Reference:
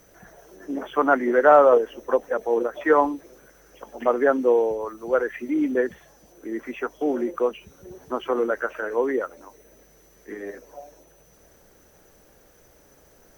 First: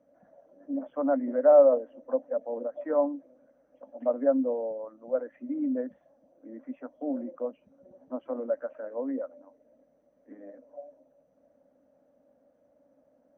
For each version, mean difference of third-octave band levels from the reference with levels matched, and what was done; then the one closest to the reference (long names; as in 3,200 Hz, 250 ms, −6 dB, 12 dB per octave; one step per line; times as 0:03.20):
7.5 dB: pair of resonant band-passes 390 Hz, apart 1.1 octaves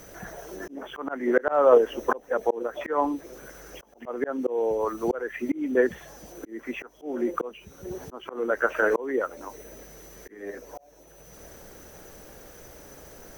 5.5 dB: volume swells 638 ms
level +8.5 dB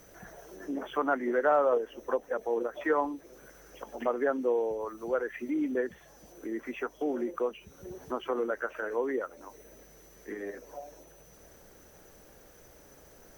3.0 dB: downward compressor 1.5 to 1, threshold −41 dBFS, peak gain reduction 11.5 dB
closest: third